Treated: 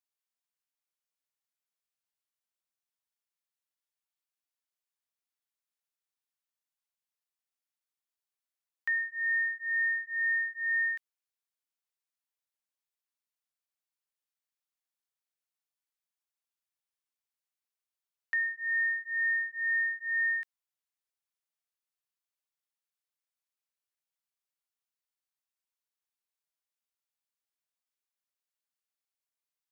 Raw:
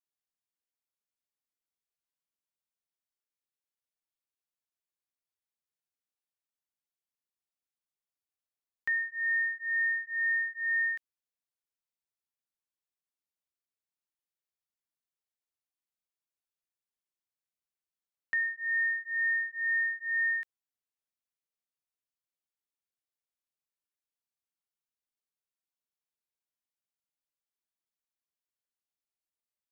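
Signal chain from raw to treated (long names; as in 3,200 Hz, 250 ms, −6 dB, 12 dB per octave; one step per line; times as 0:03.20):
high-pass filter 690 Hz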